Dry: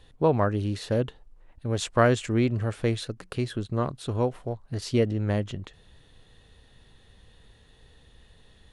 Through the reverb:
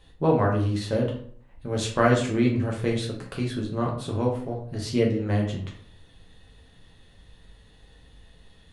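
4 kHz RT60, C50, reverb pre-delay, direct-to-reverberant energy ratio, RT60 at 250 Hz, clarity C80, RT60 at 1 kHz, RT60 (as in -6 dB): 0.35 s, 6.5 dB, 5 ms, -2.0 dB, 0.60 s, 10.5 dB, 0.50 s, 0.55 s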